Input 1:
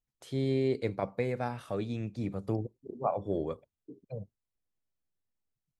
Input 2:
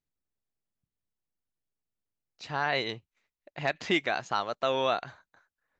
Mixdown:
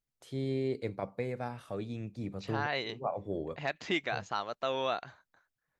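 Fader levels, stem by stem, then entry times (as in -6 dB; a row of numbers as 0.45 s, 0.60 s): -4.0 dB, -5.0 dB; 0.00 s, 0.00 s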